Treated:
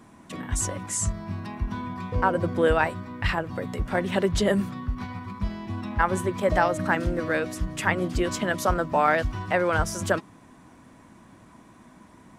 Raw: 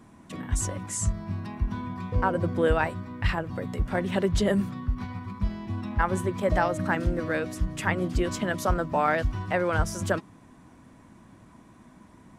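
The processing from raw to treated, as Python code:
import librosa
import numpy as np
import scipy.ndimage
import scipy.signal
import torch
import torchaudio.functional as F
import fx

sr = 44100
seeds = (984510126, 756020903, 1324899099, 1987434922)

y = fx.low_shelf(x, sr, hz=240.0, db=-5.5)
y = y * 10.0 ** (3.5 / 20.0)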